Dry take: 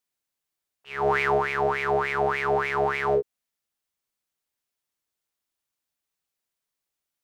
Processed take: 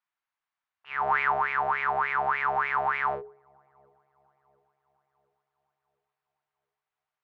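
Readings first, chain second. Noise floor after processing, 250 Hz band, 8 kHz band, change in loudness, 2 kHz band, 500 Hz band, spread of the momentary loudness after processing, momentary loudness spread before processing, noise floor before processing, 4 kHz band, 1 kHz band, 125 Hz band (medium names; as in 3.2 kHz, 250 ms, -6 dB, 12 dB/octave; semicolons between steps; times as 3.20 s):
under -85 dBFS, -13.5 dB, no reading, -2.0 dB, -0.5 dB, -12.0 dB, 6 LU, 5 LU, -85 dBFS, -7.0 dB, +0.5 dB, -11.5 dB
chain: low-pass 2.1 kHz 12 dB/octave; resonant low shelf 670 Hz -11.5 dB, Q 1.5; hum notches 60/120/180/240/300/360/420 Hz; in parallel at -2 dB: compression, threshold -32 dBFS, peak gain reduction 12 dB; on the sum: feedback echo behind a low-pass 699 ms, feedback 47%, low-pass 490 Hz, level -24 dB; trim -2 dB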